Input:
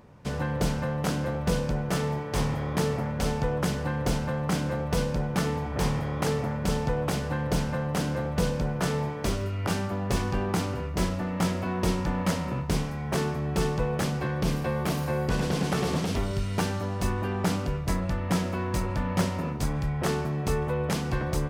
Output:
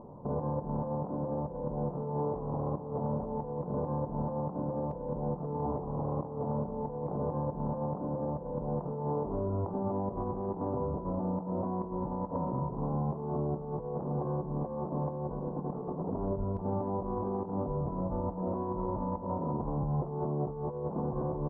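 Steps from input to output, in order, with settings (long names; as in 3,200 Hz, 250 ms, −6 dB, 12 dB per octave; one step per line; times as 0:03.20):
elliptic low-pass filter 1,000 Hz, stop band 50 dB
parametric band 64 Hz −12 dB 1.8 octaves
compressor whose output falls as the input rises −35 dBFS, ratio −0.5
brickwall limiter −28.5 dBFS, peak gain reduction 7.5 dB
on a send: single-tap delay 177 ms −12 dB
on the sum: level +3.5 dB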